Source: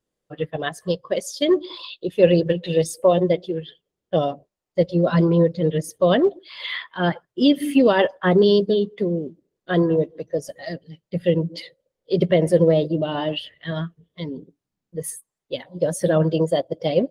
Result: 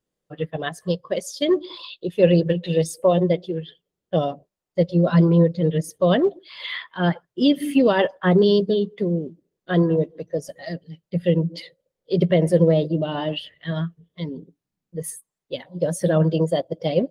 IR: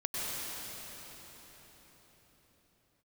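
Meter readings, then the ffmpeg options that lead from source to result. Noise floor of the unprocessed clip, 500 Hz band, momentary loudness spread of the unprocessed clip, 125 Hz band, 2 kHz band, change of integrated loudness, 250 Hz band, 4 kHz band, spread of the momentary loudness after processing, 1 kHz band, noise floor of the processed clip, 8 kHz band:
-84 dBFS, -1.5 dB, 16 LU, +2.5 dB, -1.5 dB, -0.5 dB, +0.5 dB, -1.5 dB, 16 LU, -1.5 dB, -85 dBFS, -1.5 dB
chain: -af "equalizer=f=170:t=o:w=0.38:g=4.5,volume=0.841"

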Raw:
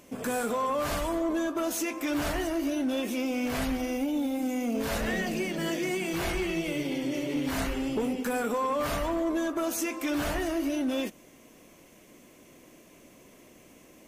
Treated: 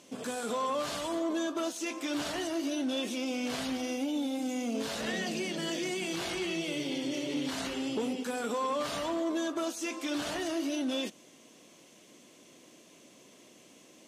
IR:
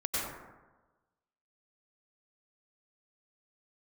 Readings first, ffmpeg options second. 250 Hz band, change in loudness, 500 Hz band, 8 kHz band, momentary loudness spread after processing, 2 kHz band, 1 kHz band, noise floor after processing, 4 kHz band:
-4.0 dB, -3.5 dB, -3.5 dB, -2.0 dB, 2 LU, -4.0 dB, -4.0 dB, -58 dBFS, +2.0 dB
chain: -af "aexciter=amount=2.7:drive=6:freq=3100,alimiter=limit=0.0891:level=0:latency=1:release=17,highpass=150,lowpass=5500,volume=0.708"

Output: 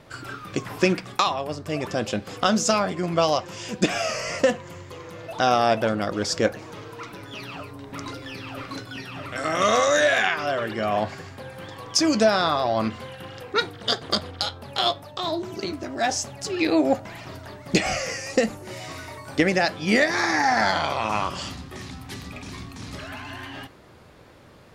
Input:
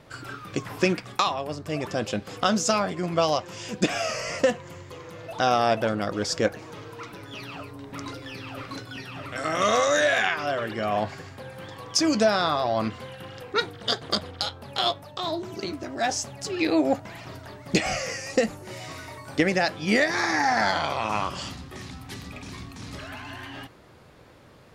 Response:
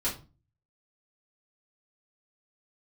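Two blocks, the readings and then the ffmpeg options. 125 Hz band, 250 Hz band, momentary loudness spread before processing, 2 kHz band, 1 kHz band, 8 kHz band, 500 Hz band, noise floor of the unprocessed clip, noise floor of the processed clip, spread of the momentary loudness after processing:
+1.5 dB, +2.0 dB, 18 LU, +2.0 dB, +2.0 dB, +2.0 dB, +2.0 dB, -47 dBFS, -44 dBFS, 18 LU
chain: -filter_complex "[0:a]asplit=2[s0][s1];[1:a]atrim=start_sample=2205[s2];[s1][s2]afir=irnorm=-1:irlink=0,volume=0.0631[s3];[s0][s3]amix=inputs=2:normalize=0,volume=1.19"

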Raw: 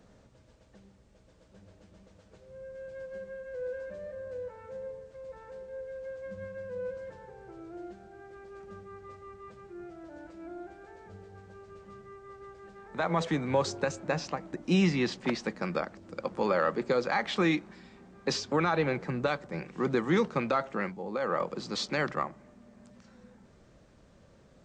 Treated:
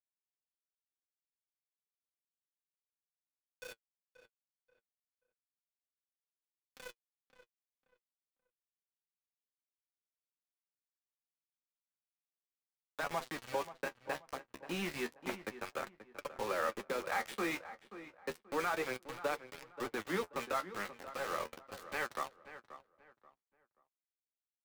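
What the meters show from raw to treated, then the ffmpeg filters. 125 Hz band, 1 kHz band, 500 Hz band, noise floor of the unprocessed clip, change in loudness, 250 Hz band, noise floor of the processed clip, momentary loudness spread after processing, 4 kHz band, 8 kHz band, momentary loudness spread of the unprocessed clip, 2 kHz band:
-19.0 dB, -7.0 dB, -10.5 dB, -60 dBFS, -8.0 dB, -14.5 dB, under -85 dBFS, 16 LU, -9.5 dB, -6.0 dB, 21 LU, -6.0 dB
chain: -filter_complex "[0:a]acrossover=split=370[s0][s1];[s0]acompressor=mode=upward:threshold=0.01:ratio=2.5[s2];[s2][s1]amix=inputs=2:normalize=0,highpass=160,aemphasis=mode=production:type=bsi,acrossover=split=2800[s3][s4];[s4]acompressor=threshold=0.002:ratio=4:attack=1:release=60[s5];[s3][s5]amix=inputs=2:normalize=0,lowpass=4400,highshelf=f=2400:g=4.5,aeval=exprs='val(0)*gte(abs(val(0)),0.0266)':c=same,flanger=delay=6.8:depth=8.1:regen=38:speed=0.31:shape=sinusoidal,asplit=2[s6][s7];[s7]adelay=532,lowpass=f=2300:p=1,volume=0.224,asplit=2[s8][s9];[s9]adelay=532,lowpass=f=2300:p=1,volume=0.29,asplit=2[s10][s11];[s11]adelay=532,lowpass=f=2300:p=1,volume=0.29[s12];[s6][s8][s10][s12]amix=inputs=4:normalize=0,volume=0.668"

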